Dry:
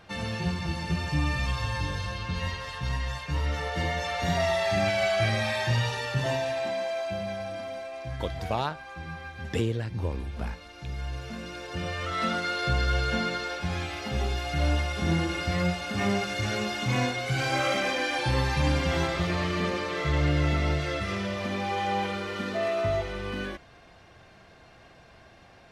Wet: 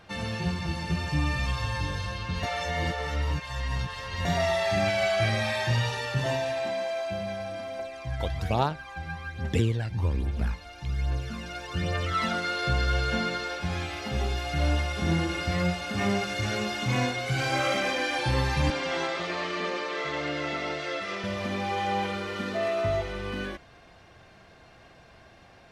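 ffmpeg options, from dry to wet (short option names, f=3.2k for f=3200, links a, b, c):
-filter_complex "[0:a]asettb=1/sr,asplit=3[a][b][c];[a]atrim=end=7.794[d];[b]atrim=start=7.79:end=12.33,asetpts=PTS-STARTPTS,afade=t=in:d=0.004:c=qsin,afade=t=out:st=4.536:d=0.004:c=qsin,aphaser=in_gain=1:out_gain=1:delay=1.5:decay=0.53:speed=1.2:type=triangular[e];[c]atrim=start=12.326[f];[d][e]acrossfade=d=0.004:c1=hsin:c2=qsin[g];[g][f]acrossfade=d=0.004:c1=qsin:c2=hsin,asettb=1/sr,asplit=3[h][i][j];[h]atrim=end=18.704[k];[i]atrim=start=18.7:end=21.24,asetpts=PTS-STARTPTS,afade=t=in:d=0.004:c=qsin,afade=t=out:st=2.536:d=0.004:c=qsin,highpass=340,lowpass=7k[l];[j]atrim=start=21.236[m];[k][l]acrossfade=d=0.004:c1=hsin:c2=qsin[n];[n][m]acrossfade=d=0.004:c1=qsin:c2=hsin,asplit=3[o][p][q];[o]atrim=end=2.432[r];[p]atrim=start=2.428:end=4.252,asetpts=PTS-STARTPTS,areverse[s];[q]atrim=start=4.248[t];[r][s]acrossfade=d=0.004:c1=hsin:c2=hsin[u];[u][t]acrossfade=d=0.004:c1=hsin:c2=hsin"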